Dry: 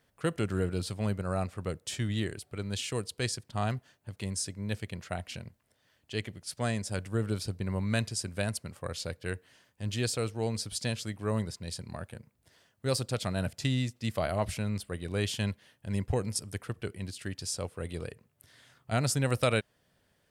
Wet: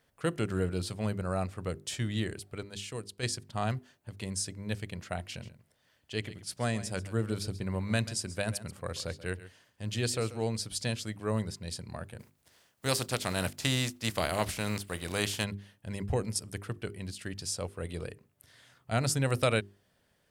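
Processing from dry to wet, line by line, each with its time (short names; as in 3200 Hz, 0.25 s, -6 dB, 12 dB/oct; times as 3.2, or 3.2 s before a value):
2.63–3.23 gain -5.5 dB
5.28–10.43 echo 0.135 s -15.5 dB
12.19–15.43 spectral contrast lowered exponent 0.63
whole clip: notches 50/100/150/200/250/300/350/400 Hz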